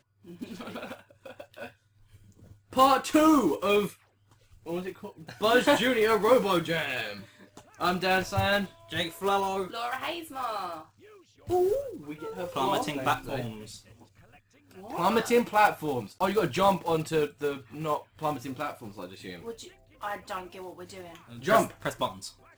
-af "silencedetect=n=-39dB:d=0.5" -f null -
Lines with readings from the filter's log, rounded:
silence_start: 1.68
silence_end: 2.73 | silence_duration: 1.05
silence_start: 3.92
silence_end: 4.66 | silence_duration: 0.75
silence_start: 10.82
silence_end: 11.49 | silence_duration: 0.67
silence_start: 13.77
silence_end: 14.78 | silence_duration: 1.00